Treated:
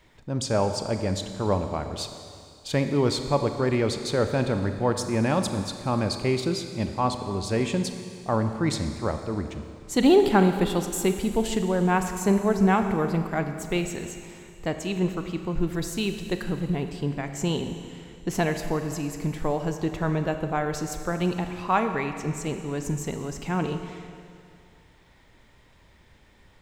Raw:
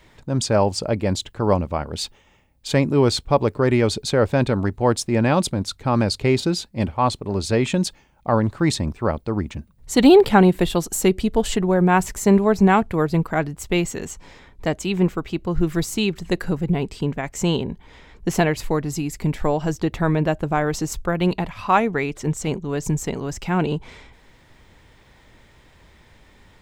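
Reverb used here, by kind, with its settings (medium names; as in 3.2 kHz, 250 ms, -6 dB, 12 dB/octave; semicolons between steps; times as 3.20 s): Schroeder reverb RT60 2.4 s, combs from 28 ms, DRR 7 dB; trim -6 dB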